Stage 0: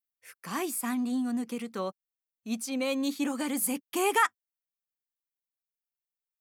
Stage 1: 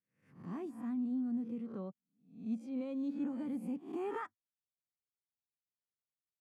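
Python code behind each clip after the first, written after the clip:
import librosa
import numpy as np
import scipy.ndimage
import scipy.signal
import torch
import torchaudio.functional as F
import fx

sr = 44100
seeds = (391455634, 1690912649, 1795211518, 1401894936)

y = fx.spec_swells(x, sr, rise_s=0.47)
y = fx.bandpass_q(y, sr, hz=120.0, q=1.2)
y = y * 10.0 ** (1.0 / 20.0)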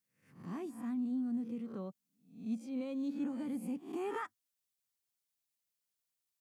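y = fx.high_shelf(x, sr, hz=3000.0, db=10.0)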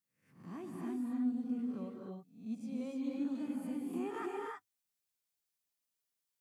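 y = fx.rev_gated(x, sr, seeds[0], gate_ms=340, shape='rising', drr_db=-1.0)
y = y * 10.0 ** (-4.0 / 20.0)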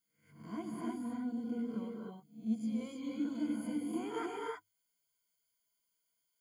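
y = fx.ripple_eq(x, sr, per_octave=1.8, db=17)
y = y * 10.0 ** (1.0 / 20.0)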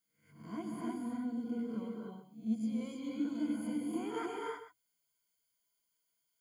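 y = x + 10.0 ** (-11.5 / 20.0) * np.pad(x, (int(127 * sr / 1000.0), 0))[:len(x)]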